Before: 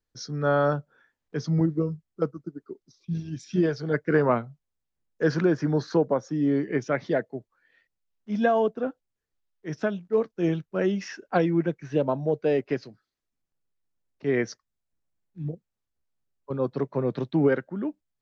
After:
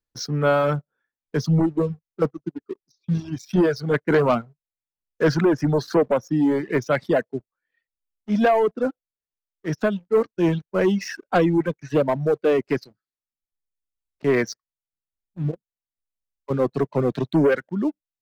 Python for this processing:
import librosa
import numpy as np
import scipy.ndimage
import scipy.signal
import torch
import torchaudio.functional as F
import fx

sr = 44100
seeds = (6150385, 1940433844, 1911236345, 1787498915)

y = fx.leveller(x, sr, passes=2)
y = fx.dereverb_blind(y, sr, rt60_s=1.1)